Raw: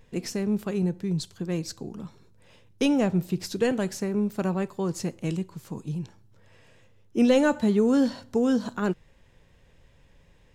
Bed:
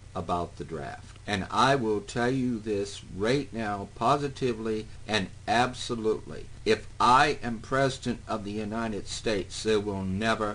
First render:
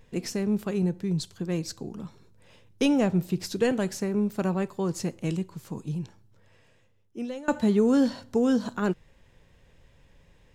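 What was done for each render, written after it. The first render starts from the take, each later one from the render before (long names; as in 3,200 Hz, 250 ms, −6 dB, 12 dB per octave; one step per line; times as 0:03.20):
0:05.97–0:07.48: fade out, to −23.5 dB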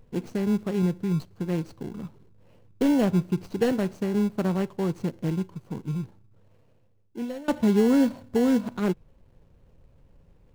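running median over 25 samples
in parallel at −11 dB: decimation without filtering 36×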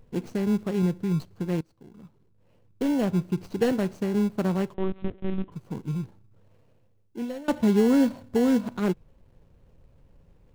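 0:01.61–0:03.62: fade in, from −21 dB
0:04.74–0:05.52: one-pitch LPC vocoder at 8 kHz 190 Hz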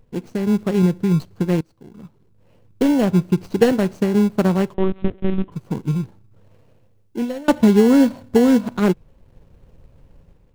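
automatic gain control gain up to 7.5 dB
transient designer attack +3 dB, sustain −2 dB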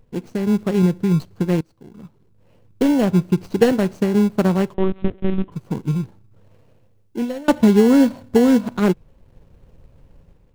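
no processing that can be heard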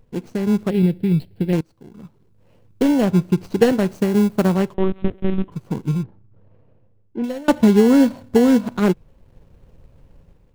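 0:00.70–0:01.53: phaser with its sweep stopped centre 2,800 Hz, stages 4
0:03.88–0:04.55: high-shelf EQ 9,600 Hz +6.5 dB
0:06.03–0:07.24: head-to-tape spacing loss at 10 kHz 37 dB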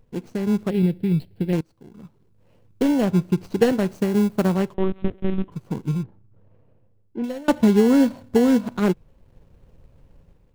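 level −3 dB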